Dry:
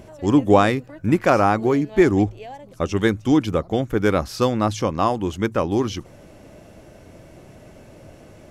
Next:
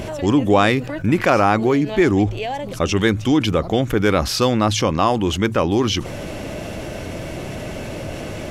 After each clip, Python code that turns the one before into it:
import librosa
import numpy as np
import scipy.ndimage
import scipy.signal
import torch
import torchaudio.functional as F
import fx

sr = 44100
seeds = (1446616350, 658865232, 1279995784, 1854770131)

y = fx.peak_eq(x, sr, hz=3000.0, db=5.5, octaves=1.4)
y = fx.env_flatten(y, sr, amount_pct=50)
y = y * 10.0 ** (-2.0 / 20.0)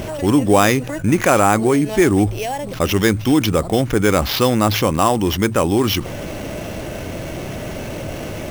y = fx.sample_hold(x, sr, seeds[0], rate_hz=8600.0, jitter_pct=0)
y = y * 10.0 ** (1.5 / 20.0)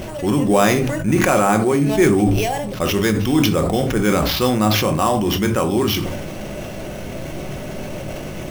y = fx.room_shoebox(x, sr, seeds[1], volume_m3=280.0, walls='furnished', distance_m=1.0)
y = fx.sustainer(y, sr, db_per_s=29.0)
y = y * 10.0 ** (-4.0 / 20.0)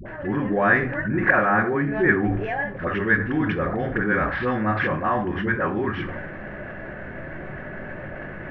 y = fx.ladder_lowpass(x, sr, hz=1800.0, resonance_pct=80)
y = fx.dispersion(y, sr, late='highs', ms=62.0, hz=560.0)
y = y * 10.0 ** (5.0 / 20.0)